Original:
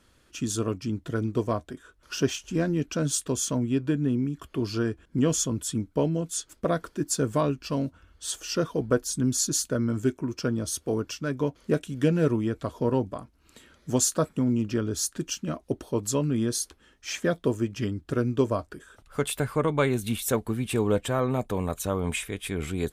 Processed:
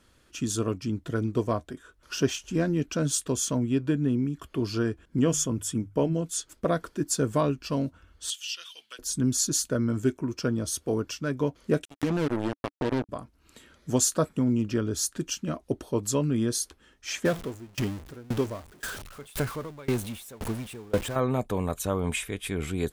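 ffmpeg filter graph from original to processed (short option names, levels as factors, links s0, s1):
-filter_complex "[0:a]asettb=1/sr,asplit=3[s0][s1][s2];[s0]atrim=end=5.244[s3];[s1]atrim=start=5.24:end=6.13,asetpts=PTS-STARTPTS,afade=t=in:d=0.004:c=qsin,afade=t=out:st=0.886:d=0.004:c=qsin,equalizer=f=4100:t=o:w=0.27:g=-10,bandreject=f=50:t=h:w=6,bandreject=f=100:t=h:w=6,bandreject=f=150:t=h:w=6[s4];[s2]atrim=start=6.126[s5];[s3][s4]acrossfade=d=0.004:c1=hsin:c2=qsin[s6];[s6][s5]acrossfade=d=0.004:c1=qsin:c2=hsin,asettb=1/sr,asplit=3[s7][s8][s9];[s7]atrim=end=8.304[s10];[s8]atrim=start=8.3:end=8.99,asetpts=PTS-STARTPTS,afade=t=in:d=0.004:c=qsin,afade=t=out:st=0.686:d=0.004:c=qsin,highpass=f=3000:t=q:w=4.5,acompressor=threshold=0.01:ratio=1.5:attack=3.2:release=140:knee=1:detection=peak[s11];[s9]atrim=start=8.986[s12];[s10][s11]acrossfade=d=0.004:c1=hsin:c2=qsin[s13];[s13][s12]acrossfade=d=0.004:c1=qsin:c2=hsin,asettb=1/sr,asplit=3[s14][s15][s16];[s14]atrim=end=11.854[s17];[s15]atrim=start=11.85:end=13.09,asetpts=PTS-STARTPTS,afade=t=in:d=0.004:c=qsin,afade=t=out:st=1.236:d=0.004:c=qsin,acrusher=bits=3:mix=0:aa=0.5,equalizer=f=290:w=3.6:g=5,acompressor=threshold=0.0794:ratio=6:attack=3.2:release=140:knee=1:detection=peak[s18];[s16]atrim=start=13.086[s19];[s17][s18]acrossfade=d=0.004:c1=hsin:c2=qsin[s20];[s20][s19]acrossfade=d=0.004:c1=qsin:c2=hsin,asettb=1/sr,asplit=3[s21][s22][s23];[s21]atrim=end=17.254[s24];[s22]atrim=start=17.25:end=21.16,asetpts=PTS-STARTPTS,afade=t=in:d=0.004:c=qsin,afade=t=out:st=3.906:d=0.004:c=qsin,aeval=exprs='val(0)+0.5*0.0473*sgn(val(0))':c=same,aeval=exprs='val(0)*pow(10,-27*if(lt(mod(1.9*n/s,1),2*abs(1.9)/1000),1-mod(1.9*n/s,1)/(2*abs(1.9)/1000),(mod(1.9*n/s,1)-2*abs(1.9)/1000)/(1-2*abs(1.9)/1000))/20)':c=same[s25];[s23]atrim=start=21.156[s26];[s24][s25]acrossfade=d=0.004:c1=hsin:c2=qsin[s27];[s27][s26]acrossfade=d=0.004:c1=qsin:c2=hsin"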